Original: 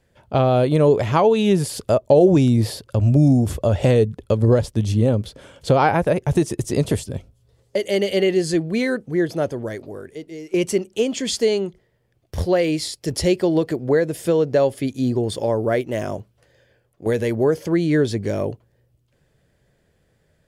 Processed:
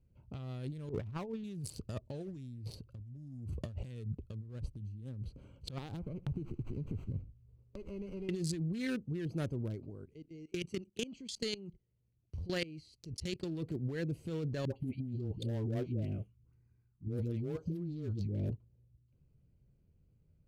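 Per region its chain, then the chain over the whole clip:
0.89–1.44 s: low-pass 1.9 kHz + compressor with a negative ratio -19 dBFS, ratio -0.5
5.78–8.29 s: compression 5:1, threshold -28 dBFS + delay 75 ms -19 dB + sliding maximum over 9 samples
9.90–13.45 s: peaking EQ 4.4 kHz +7.5 dB 2.3 oct + level held to a coarse grid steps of 18 dB
14.65–18.50 s: touch-sensitive phaser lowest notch 540 Hz, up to 2 kHz, full sweep at -15 dBFS + phase dispersion highs, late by 107 ms, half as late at 650 Hz
whole clip: local Wiener filter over 25 samples; amplifier tone stack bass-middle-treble 6-0-2; compressor with a negative ratio -44 dBFS, ratio -1; trim +5 dB

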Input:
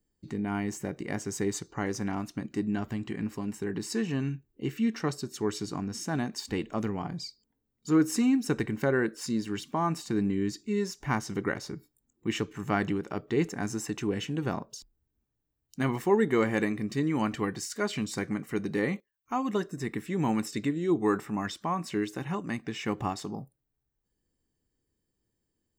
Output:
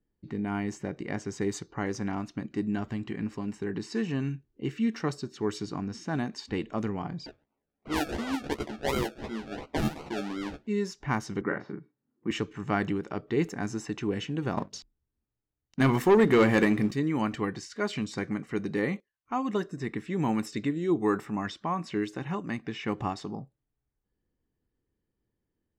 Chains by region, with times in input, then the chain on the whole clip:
7.26–10.67 s: high-pass 390 Hz + decimation with a swept rate 35×, swing 60% 2.8 Hz + doubling 14 ms -4.5 dB
11.41–12.31 s: Chebyshev band-pass 170–1700 Hz + doubling 43 ms -5 dB
14.57–16.91 s: hum notches 50/100/150/200/250/300/350 Hz + waveshaping leveller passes 2
whole clip: level-controlled noise filter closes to 2.3 kHz, open at -24 dBFS; dynamic bell 8.8 kHz, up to -4 dB, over -54 dBFS, Q 0.85

